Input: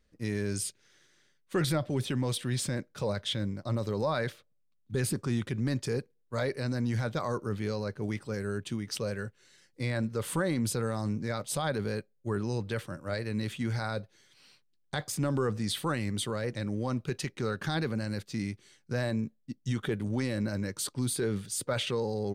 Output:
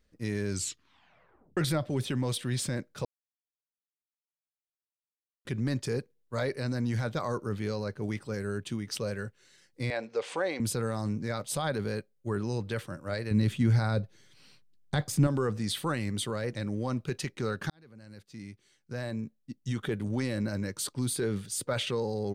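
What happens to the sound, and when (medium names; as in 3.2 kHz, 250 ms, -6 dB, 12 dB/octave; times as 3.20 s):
0.50 s: tape stop 1.07 s
3.05–5.45 s: mute
9.90–10.60 s: cabinet simulation 460–6600 Hz, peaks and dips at 470 Hz +7 dB, 740 Hz +8 dB, 1.3 kHz -4 dB, 2.4 kHz +7 dB
13.31–15.27 s: bass shelf 290 Hz +10.5 dB
17.70–20.03 s: fade in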